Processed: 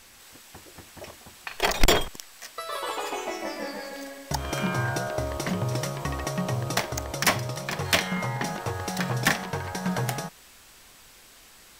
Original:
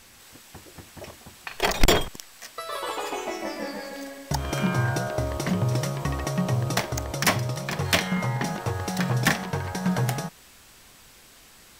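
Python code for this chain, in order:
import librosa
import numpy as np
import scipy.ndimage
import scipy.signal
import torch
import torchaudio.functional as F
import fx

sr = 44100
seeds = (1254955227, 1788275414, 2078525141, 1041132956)

y = fx.peak_eq(x, sr, hz=130.0, db=-4.5, octaves=2.5)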